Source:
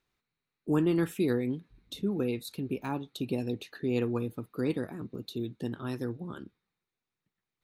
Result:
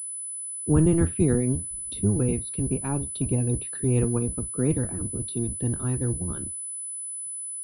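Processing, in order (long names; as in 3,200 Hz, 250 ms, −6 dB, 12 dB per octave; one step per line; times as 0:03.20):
sub-octave generator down 1 octave, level 0 dB
low-shelf EQ 340 Hz +7 dB
treble cut that deepens with the level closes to 2,600 Hz, closed at −24.5 dBFS
switching amplifier with a slow clock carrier 10,000 Hz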